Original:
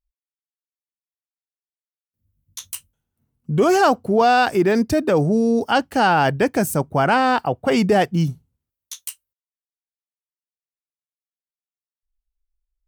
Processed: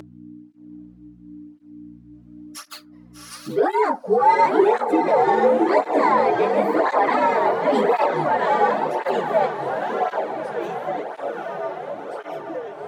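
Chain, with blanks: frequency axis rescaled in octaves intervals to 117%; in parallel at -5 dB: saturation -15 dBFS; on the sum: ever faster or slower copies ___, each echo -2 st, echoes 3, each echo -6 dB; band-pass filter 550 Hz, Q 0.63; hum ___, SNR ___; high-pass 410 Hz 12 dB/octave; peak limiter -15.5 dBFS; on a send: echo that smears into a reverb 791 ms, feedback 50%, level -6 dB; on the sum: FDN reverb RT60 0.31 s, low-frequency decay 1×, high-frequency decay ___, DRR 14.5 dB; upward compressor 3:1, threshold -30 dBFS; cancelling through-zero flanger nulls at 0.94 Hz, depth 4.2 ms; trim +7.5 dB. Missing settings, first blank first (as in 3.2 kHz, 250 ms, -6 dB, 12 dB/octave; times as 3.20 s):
444 ms, 60 Hz, 32 dB, 0.5×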